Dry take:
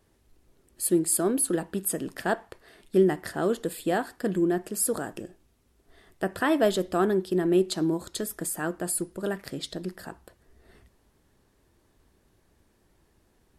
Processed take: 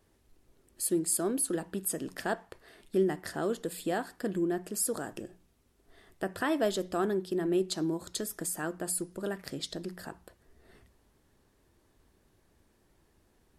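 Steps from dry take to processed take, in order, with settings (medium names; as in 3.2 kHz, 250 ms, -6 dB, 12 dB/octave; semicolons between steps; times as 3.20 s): hum notches 60/120/180 Hz; in parallel at -1 dB: compression, threshold -34 dBFS, peak gain reduction 17 dB; on the sum: dynamic bell 5.9 kHz, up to +5 dB, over -47 dBFS, Q 1.5; trim -7.5 dB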